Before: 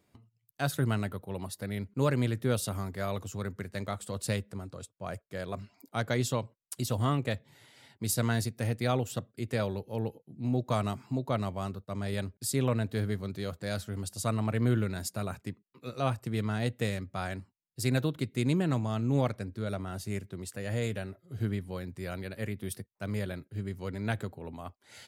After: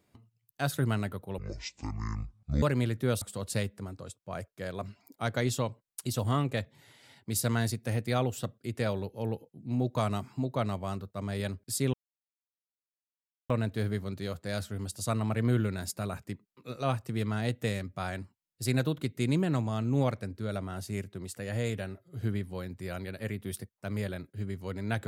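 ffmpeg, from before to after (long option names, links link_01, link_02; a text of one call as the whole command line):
ffmpeg -i in.wav -filter_complex "[0:a]asplit=5[link_01][link_02][link_03][link_04][link_05];[link_01]atrim=end=1.384[link_06];[link_02]atrim=start=1.38:end=2.04,asetpts=PTS-STARTPTS,asetrate=23373,aresample=44100[link_07];[link_03]atrim=start=2.036:end=2.632[link_08];[link_04]atrim=start=3.948:end=12.67,asetpts=PTS-STARTPTS,afade=type=out:start_time=8.718:duration=0.004:curve=hsin,apad=pad_dur=1.56[link_09];[link_05]atrim=start=12.67,asetpts=PTS-STARTPTS,afade=type=in:duration=0.004:curve=hsin[link_10];[link_06][link_07]acrossfade=duration=0.004:curve1=hsin:curve2=hsin[link_11];[link_11][link_08]acrossfade=duration=0.004:curve1=hsin:curve2=hsin[link_12];[link_09][link_10]concat=n=2:v=0:a=1[link_13];[link_12][link_13]acrossfade=duration=0.004:curve1=hsin:curve2=hsin" out.wav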